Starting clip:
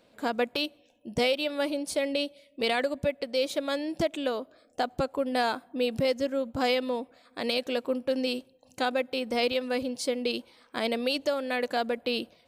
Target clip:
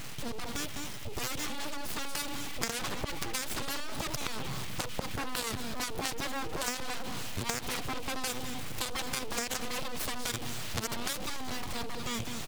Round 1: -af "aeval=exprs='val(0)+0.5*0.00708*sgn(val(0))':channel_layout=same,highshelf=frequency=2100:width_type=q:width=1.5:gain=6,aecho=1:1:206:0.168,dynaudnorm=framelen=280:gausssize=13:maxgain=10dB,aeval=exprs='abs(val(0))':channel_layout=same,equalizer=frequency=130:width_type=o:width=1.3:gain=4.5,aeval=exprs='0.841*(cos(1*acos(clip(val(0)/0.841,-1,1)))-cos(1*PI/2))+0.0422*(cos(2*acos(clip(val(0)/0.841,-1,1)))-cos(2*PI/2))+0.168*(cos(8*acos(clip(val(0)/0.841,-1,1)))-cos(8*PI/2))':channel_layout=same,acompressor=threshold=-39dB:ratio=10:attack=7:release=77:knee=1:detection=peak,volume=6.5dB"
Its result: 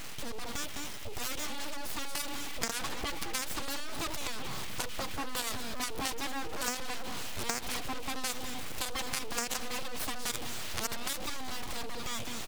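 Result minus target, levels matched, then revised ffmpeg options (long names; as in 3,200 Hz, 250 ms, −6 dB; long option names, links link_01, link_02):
125 Hz band −5.0 dB
-af "aeval=exprs='val(0)+0.5*0.00708*sgn(val(0))':channel_layout=same,highshelf=frequency=2100:width_type=q:width=1.5:gain=6,aecho=1:1:206:0.168,dynaudnorm=framelen=280:gausssize=13:maxgain=10dB,aeval=exprs='abs(val(0))':channel_layout=same,equalizer=frequency=130:width_type=o:width=1.3:gain=12.5,aeval=exprs='0.841*(cos(1*acos(clip(val(0)/0.841,-1,1)))-cos(1*PI/2))+0.0422*(cos(2*acos(clip(val(0)/0.841,-1,1)))-cos(2*PI/2))+0.168*(cos(8*acos(clip(val(0)/0.841,-1,1)))-cos(8*PI/2))':channel_layout=same,acompressor=threshold=-39dB:ratio=10:attack=7:release=77:knee=1:detection=peak,volume=6.5dB"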